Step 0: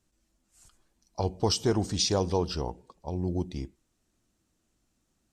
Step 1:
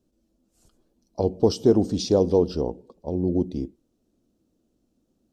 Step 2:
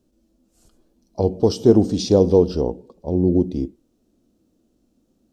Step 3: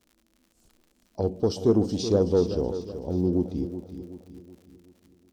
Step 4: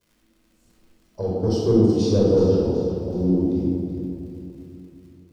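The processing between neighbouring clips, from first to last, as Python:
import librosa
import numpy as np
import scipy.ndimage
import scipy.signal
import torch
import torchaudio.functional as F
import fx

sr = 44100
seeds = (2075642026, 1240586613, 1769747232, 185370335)

y1 = fx.graphic_eq(x, sr, hz=(250, 500, 1000, 2000, 8000), db=(9, 9, -4, -10, -8))
y2 = fx.hpss(y1, sr, part='percussive', gain_db=-6)
y2 = F.gain(torch.from_numpy(y2), 7.5).numpy()
y3 = fx.dmg_crackle(y2, sr, seeds[0], per_s=90.0, level_db=-40.0)
y3 = 10.0 ** (-2.5 / 20.0) * np.tanh(y3 / 10.0 ** (-2.5 / 20.0))
y3 = fx.echo_feedback(y3, sr, ms=375, feedback_pct=46, wet_db=-11)
y3 = F.gain(torch.from_numpy(y3), -6.5).numpy()
y4 = fx.room_shoebox(y3, sr, seeds[1], volume_m3=2000.0, walls='mixed', distance_m=5.1)
y4 = F.gain(torch.from_numpy(y4), -5.5).numpy()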